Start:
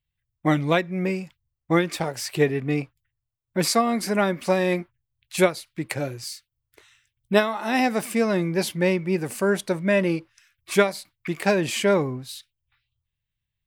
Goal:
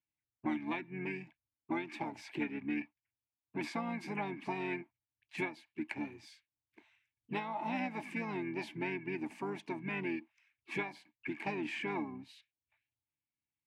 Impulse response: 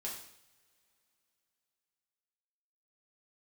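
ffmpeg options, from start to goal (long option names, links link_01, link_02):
-filter_complex "[0:a]asplit=3[link_01][link_02][link_03];[link_01]bandpass=frequency=300:width_type=q:width=8,volume=0dB[link_04];[link_02]bandpass=frequency=870:width_type=q:width=8,volume=-6dB[link_05];[link_03]bandpass=frequency=2240:width_type=q:width=8,volume=-9dB[link_06];[link_04][link_05][link_06]amix=inputs=3:normalize=0,acrossover=split=710|2900[link_07][link_08][link_09];[link_07]acompressor=threshold=-45dB:ratio=4[link_10];[link_08]acompressor=threshold=-44dB:ratio=4[link_11];[link_09]acompressor=threshold=-54dB:ratio=4[link_12];[link_10][link_11][link_12]amix=inputs=3:normalize=0,asplit=3[link_13][link_14][link_15];[link_14]asetrate=33038,aresample=44100,atempo=1.33484,volume=-7dB[link_16];[link_15]asetrate=52444,aresample=44100,atempo=0.840896,volume=-18dB[link_17];[link_13][link_16][link_17]amix=inputs=3:normalize=0,volume=4.5dB"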